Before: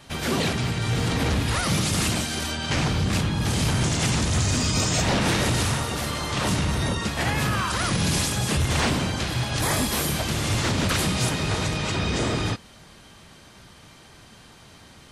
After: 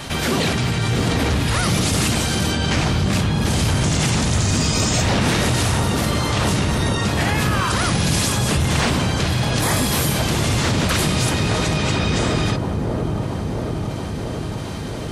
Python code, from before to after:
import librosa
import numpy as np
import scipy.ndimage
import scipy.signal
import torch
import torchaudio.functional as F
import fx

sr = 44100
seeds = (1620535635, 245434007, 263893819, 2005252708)

p1 = x + fx.echo_wet_lowpass(x, sr, ms=679, feedback_pct=63, hz=840.0, wet_db=-5.5, dry=0)
p2 = fx.env_flatten(p1, sr, amount_pct=50)
y = p2 * librosa.db_to_amplitude(2.0)